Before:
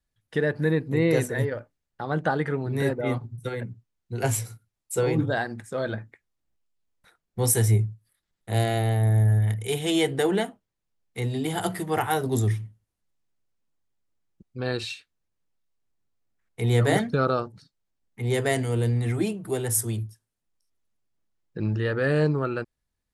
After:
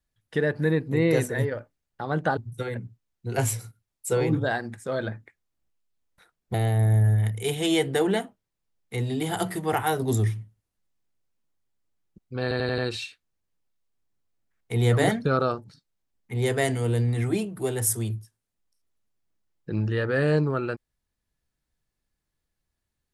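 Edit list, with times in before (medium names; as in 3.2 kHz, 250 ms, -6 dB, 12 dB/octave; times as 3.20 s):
2.37–3.23 s: delete
7.40–8.78 s: delete
14.66 s: stutter 0.09 s, 5 plays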